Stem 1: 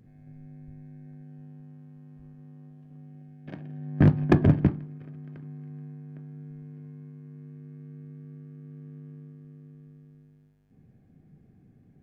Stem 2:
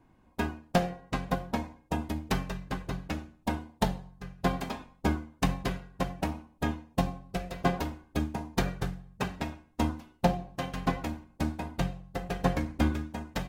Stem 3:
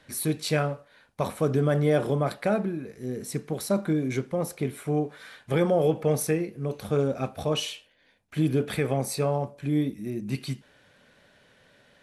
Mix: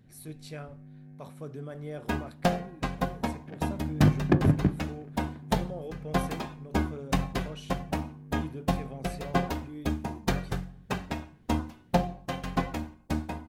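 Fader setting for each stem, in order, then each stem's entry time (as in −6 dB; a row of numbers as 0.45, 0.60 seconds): −3.0, +0.5, −17.0 decibels; 0.00, 1.70, 0.00 seconds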